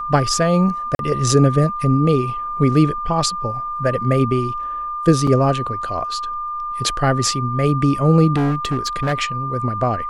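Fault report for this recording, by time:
whistle 1,200 Hz −23 dBFS
0:00.95–0:00.99: drop-out 42 ms
0:05.27: drop-out 3.9 ms
0:08.36–0:09.14: clipping −15 dBFS

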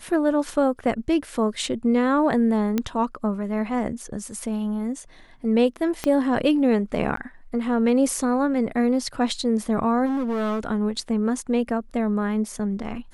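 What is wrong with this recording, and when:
0:02.78: click −10 dBFS
0:06.04: click −11 dBFS
0:07.16–0:07.17: drop-out 13 ms
0:10.05–0:10.65: clipping −22 dBFS

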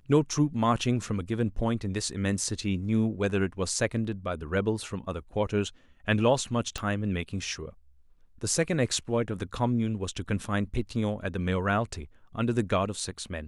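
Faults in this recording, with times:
0:06.78: click −18 dBFS

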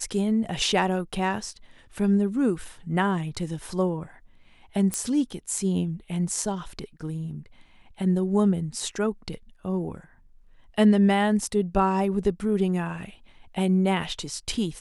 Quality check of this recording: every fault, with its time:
0:04.94: click −13 dBFS

